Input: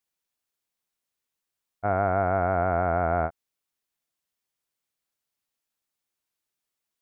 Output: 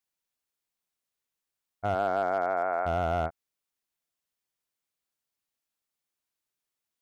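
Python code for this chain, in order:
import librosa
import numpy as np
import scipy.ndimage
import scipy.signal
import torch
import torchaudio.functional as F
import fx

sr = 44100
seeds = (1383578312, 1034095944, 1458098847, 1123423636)

y = fx.highpass(x, sr, hz=fx.line((1.94, 210.0), (2.85, 550.0)), slope=12, at=(1.94, 2.85), fade=0.02)
y = np.clip(y, -10.0 ** (-16.5 / 20.0), 10.0 ** (-16.5 / 20.0))
y = F.gain(torch.from_numpy(y), -2.5).numpy()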